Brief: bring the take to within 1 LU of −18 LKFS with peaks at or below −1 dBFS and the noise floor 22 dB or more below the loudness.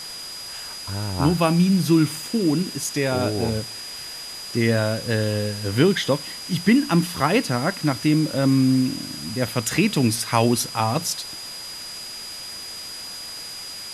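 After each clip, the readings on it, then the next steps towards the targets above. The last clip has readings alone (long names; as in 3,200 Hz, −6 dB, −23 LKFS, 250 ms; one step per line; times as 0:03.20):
interfering tone 4,900 Hz; level of the tone −34 dBFS; background noise floor −35 dBFS; target noise floor −45 dBFS; integrated loudness −22.5 LKFS; sample peak −4.0 dBFS; target loudness −18.0 LKFS
→ notch filter 4,900 Hz, Q 30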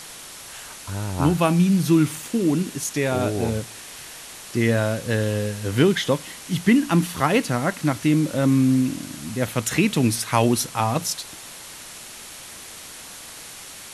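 interfering tone none found; background noise floor −40 dBFS; target noise floor −44 dBFS
→ broadband denoise 6 dB, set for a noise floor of −40 dBFS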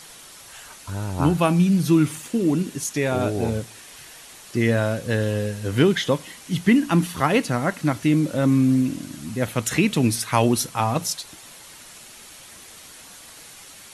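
background noise floor −44 dBFS; integrated loudness −22.0 LKFS; sample peak −4.0 dBFS; target loudness −18.0 LKFS
→ level +4 dB
brickwall limiter −1 dBFS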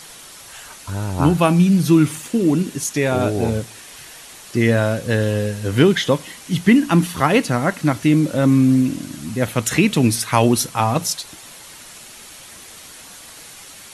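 integrated loudness −18.0 LKFS; sample peak −1.0 dBFS; background noise floor −40 dBFS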